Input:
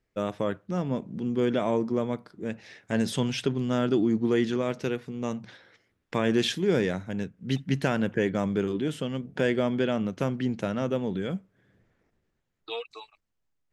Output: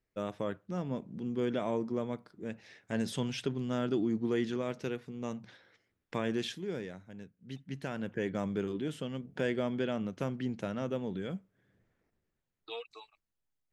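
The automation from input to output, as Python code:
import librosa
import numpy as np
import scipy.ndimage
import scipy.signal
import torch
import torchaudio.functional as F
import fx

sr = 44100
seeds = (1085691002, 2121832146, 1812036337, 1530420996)

y = fx.gain(x, sr, db=fx.line((6.15, -7.0), (6.91, -16.0), (7.58, -16.0), (8.36, -7.0)))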